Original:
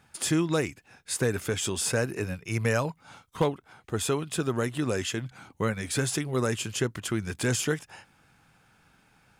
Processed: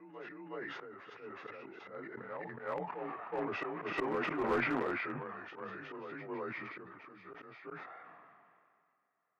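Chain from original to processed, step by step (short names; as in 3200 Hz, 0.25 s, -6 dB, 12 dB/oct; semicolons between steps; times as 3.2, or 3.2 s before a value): inharmonic rescaling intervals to 89%; Doppler pass-by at 4.02, 8 m/s, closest 1.9 m; in parallel at -7 dB: requantised 6-bit, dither none; on the sum: LPF 2000 Hz 24 dB/oct; compressor 2:1, threshold -37 dBFS, peak gain reduction 9.5 dB; auto swell 0.191 s; HPF 410 Hz 12 dB/oct; reverse echo 0.368 s -5.5 dB; one-sided clip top -41 dBFS; sustainer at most 27 dB/s; gain +11 dB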